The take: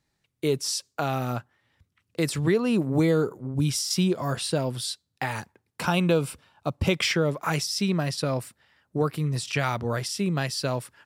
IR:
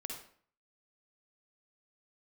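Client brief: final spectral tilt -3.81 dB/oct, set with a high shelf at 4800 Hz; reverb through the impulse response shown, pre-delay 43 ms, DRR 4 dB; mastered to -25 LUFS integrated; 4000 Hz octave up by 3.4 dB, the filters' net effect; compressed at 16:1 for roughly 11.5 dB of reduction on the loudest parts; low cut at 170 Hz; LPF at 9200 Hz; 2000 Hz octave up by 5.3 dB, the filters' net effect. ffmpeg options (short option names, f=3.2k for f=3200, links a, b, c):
-filter_complex "[0:a]highpass=170,lowpass=9.2k,equalizer=f=2k:t=o:g=6,equalizer=f=4k:t=o:g=5.5,highshelf=f=4.8k:g=-4.5,acompressor=threshold=-28dB:ratio=16,asplit=2[a][b];[1:a]atrim=start_sample=2205,adelay=43[c];[b][c]afir=irnorm=-1:irlink=0,volume=-2.5dB[d];[a][d]amix=inputs=2:normalize=0,volume=6.5dB"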